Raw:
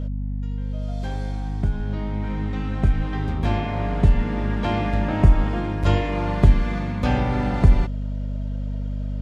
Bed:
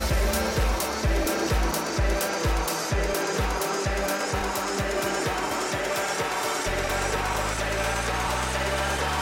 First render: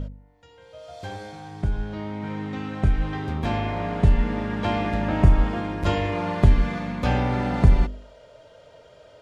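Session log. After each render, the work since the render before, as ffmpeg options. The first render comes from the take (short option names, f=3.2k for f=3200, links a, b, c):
-af "bandreject=f=50:t=h:w=4,bandreject=f=100:t=h:w=4,bandreject=f=150:t=h:w=4,bandreject=f=200:t=h:w=4,bandreject=f=250:t=h:w=4,bandreject=f=300:t=h:w=4,bandreject=f=350:t=h:w=4,bandreject=f=400:t=h:w=4,bandreject=f=450:t=h:w=4,bandreject=f=500:t=h:w=4"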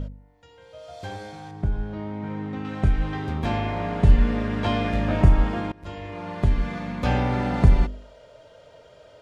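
-filter_complex "[0:a]asettb=1/sr,asplit=3[a][b][c];[a]atrim=end=1.514[d];[b]atrim=start=1.51:end=2.65,asetpts=PTS-STARTPTS,afade=t=in:d=0.004:c=qsin,afade=t=out:st=1.136:d=0.004:c=qsin,highshelf=f=2.1k:g=-9.5[e];[c]atrim=start=2.646[f];[d][e]acrossfade=d=0.004:c1=hsin:c2=qsin[g];[g][f]acrossfade=d=0.004:c1=qsin:c2=hsin,asettb=1/sr,asplit=3[h][i][j];[h]atrim=end=4.074[k];[i]atrim=start=4.07:end=5.21,asetpts=PTS-STARTPTS,afade=t=in:d=0.004:c=qsin,afade=t=out:st=1.136:d=0.004:c=qsin,asplit=2[l][m];[m]adelay=21,volume=-4dB[n];[l][n]amix=inputs=2:normalize=0,atrim=end_sample=50274[o];[j]atrim=start=5.206[p];[k][o]acrossfade=d=0.004:c1=hsin:c2=qsin[q];[q][p]acrossfade=d=0.004:c1=qsin:c2=hsin,asplit=2[r][s];[r]atrim=end=5.72,asetpts=PTS-STARTPTS,afade=t=out:st=5.716:d=0.004:c=hsin:silence=0.0841395[t];[s]atrim=start=5.72,asetpts=PTS-STARTPTS,afade=t=in:d=1.42:silence=0.0841395[u];[t][u]concat=n=2:v=0:a=1"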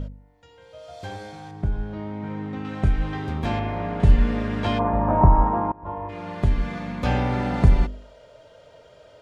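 -filter_complex "[0:a]asettb=1/sr,asplit=3[a][b][c];[a]atrim=end=3.594[d];[b]atrim=start=3.59:end=4,asetpts=PTS-STARTPTS,afade=t=in:d=0.004:c=qsin,afade=t=out:st=0.406:d=0.004:c=qsin,highshelf=f=3.5k:g=-9.5[e];[c]atrim=start=3.996[f];[d][e]acrossfade=d=0.004:c1=hsin:c2=qsin[g];[g][f]acrossfade=d=0.004:c1=qsin:c2=hsin,asplit=3[h][i][j];[h]afade=t=out:st=4.78:d=0.02[k];[i]lowpass=f=960:t=q:w=5.9,afade=t=in:st=4.78:d=0.02,afade=t=out:st=6.08:d=0.02[l];[j]afade=t=in:st=6.08:d=0.02[m];[k][l][m]amix=inputs=3:normalize=0"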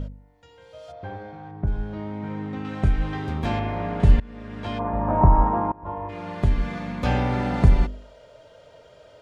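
-filter_complex "[0:a]asplit=3[a][b][c];[a]afade=t=out:st=0.91:d=0.02[d];[b]lowpass=1.7k,afade=t=in:st=0.91:d=0.02,afade=t=out:st=1.66:d=0.02[e];[c]afade=t=in:st=1.66:d=0.02[f];[d][e][f]amix=inputs=3:normalize=0,asplit=2[g][h];[g]atrim=end=4.2,asetpts=PTS-STARTPTS,afade=t=out:st=4.196:d=0.004:c=hsin:silence=0.0630957[i];[h]atrim=start=4.2,asetpts=PTS-STARTPTS,afade=t=in:d=1.16:silence=0.0630957[j];[i][j]concat=n=2:v=0:a=1"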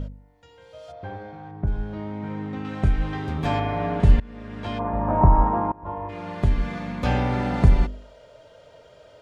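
-filter_complex "[0:a]asettb=1/sr,asplit=3[a][b][c];[a]atrim=end=3.384[d];[b]atrim=start=3.38:end=4,asetpts=PTS-STARTPTS,afade=t=in:d=0.004:c=qsin,afade=t=out:st=0.616:d=0.004:c=qsin,aecho=1:1:6.9:0.65,atrim=end_sample=27342[e];[c]atrim=start=3.996[f];[d][e]acrossfade=d=0.004:c1=hsin:c2=qsin[g];[g][f]acrossfade=d=0.004:c1=qsin:c2=hsin"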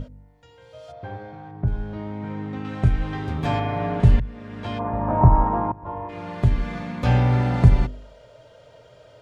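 -af "equalizer=f=120:w=4:g=9.5,bandreject=f=50:t=h:w=6,bandreject=f=100:t=h:w=6,bandreject=f=150:t=h:w=6,bandreject=f=200:t=h:w=6"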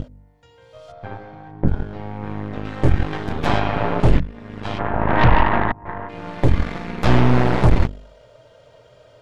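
-af "asoftclip=type=tanh:threshold=-7.5dB,aeval=exprs='0.422*(cos(1*acos(clip(val(0)/0.422,-1,1)))-cos(1*PI/2))+0.188*(cos(6*acos(clip(val(0)/0.422,-1,1)))-cos(6*PI/2))':c=same"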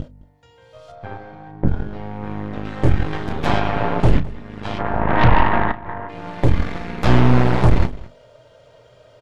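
-filter_complex "[0:a]asplit=2[a][b];[b]adelay=33,volume=-13.5dB[c];[a][c]amix=inputs=2:normalize=0,aecho=1:1:212:0.0944"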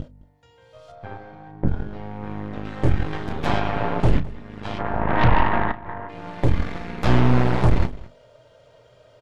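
-af "volume=-3.5dB"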